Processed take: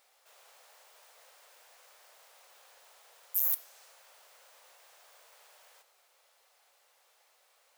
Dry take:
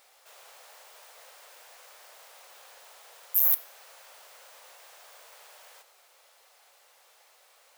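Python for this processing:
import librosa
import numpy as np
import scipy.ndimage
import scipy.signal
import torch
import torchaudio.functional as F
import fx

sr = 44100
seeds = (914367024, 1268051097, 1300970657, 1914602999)

y = fx.dynamic_eq(x, sr, hz=6900.0, q=0.83, threshold_db=-55.0, ratio=4.0, max_db=6)
y = y * 10.0 ** (-7.5 / 20.0)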